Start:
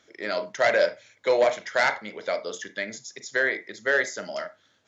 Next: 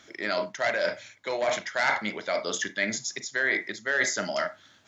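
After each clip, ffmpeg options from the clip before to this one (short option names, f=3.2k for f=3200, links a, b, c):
-af "areverse,acompressor=threshold=-30dB:ratio=6,areverse,equalizer=f=480:t=o:w=0.51:g=-8.5,volume=8dB"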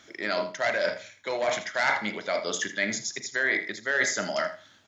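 -af "aecho=1:1:81|162:0.224|0.0403"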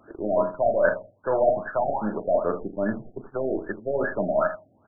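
-filter_complex "[0:a]asplit=2[a][b];[b]acrusher=bits=4:dc=4:mix=0:aa=0.000001,volume=-8dB[c];[a][c]amix=inputs=2:normalize=0,afftfilt=real='re*lt(b*sr/1024,740*pow(1800/740,0.5+0.5*sin(2*PI*2.5*pts/sr)))':imag='im*lt(b*sr/1024,740*pow(1800/740,0.5+0.5*sin(2*PI*2.5*pts/sr)))':win_size=1024:overlap=0.75,volume=5.5dB"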